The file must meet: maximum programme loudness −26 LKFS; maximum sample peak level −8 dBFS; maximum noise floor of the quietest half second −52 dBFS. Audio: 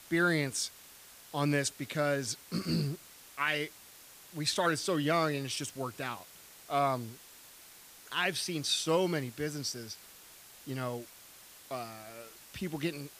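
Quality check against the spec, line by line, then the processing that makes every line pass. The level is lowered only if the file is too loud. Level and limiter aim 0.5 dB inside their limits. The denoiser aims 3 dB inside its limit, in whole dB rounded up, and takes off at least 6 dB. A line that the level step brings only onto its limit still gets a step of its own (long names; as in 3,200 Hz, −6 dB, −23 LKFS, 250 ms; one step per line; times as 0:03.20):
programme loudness −33.0 LKFS: in spec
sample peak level −16.5 dBFS: in spec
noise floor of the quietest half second −54 dBFS: in spec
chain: no processing needed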